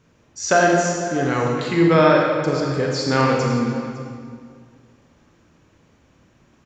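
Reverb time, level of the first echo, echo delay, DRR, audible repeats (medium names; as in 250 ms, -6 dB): 2.1 s, -19.0 dB, 556 ms, -1.5 dB, 1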